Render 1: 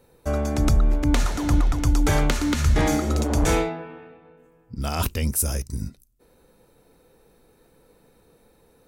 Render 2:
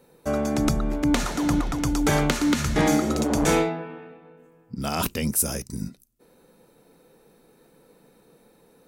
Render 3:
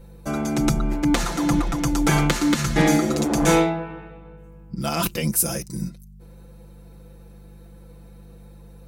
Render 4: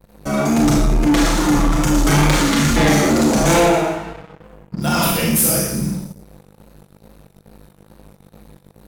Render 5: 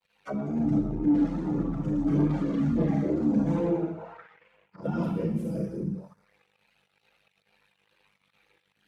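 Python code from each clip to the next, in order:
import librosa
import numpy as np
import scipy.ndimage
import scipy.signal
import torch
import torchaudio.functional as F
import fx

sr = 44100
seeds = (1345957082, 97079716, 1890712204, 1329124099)

y1 = fx.low_shelf_res(x, sr, hz=120.0, db=-9.5, q=1.5)
y1 = F.gain(torch.from_numpy(y1), 1.0).numpy()
y2 = fx.add_hum(y1, sr, base_hz=50, snr_db=20)
y2 = y2 + 0.88 * np.pad(y2, (int(5.9 * sr / 1000.0), 0))[:len(y2)]
y3 = fx.vibrato(y2, sr, rate_hz=2.3, depth_cents=84.0)
y3 = fx.rev_schroeder(y3, sr, rt60_s=0.8, comb_ms=27, drr_db=-3.0)
y3 = fx.leveller(y3, sr, passes=3)
y3 = F.gain(torch.from_numpy(y3), -7.0).numpy()
y4 = fx.auto_wah(y3, sr, base_hz=260.0, top_hz=3000.0, q=2.7, full_db=-16.5, direction='down')
y4 = fx.chorus_voices(y4, sr, voices=6, hz=0.83, base_ms=11, depth_ms=1.3, mix_pct=70)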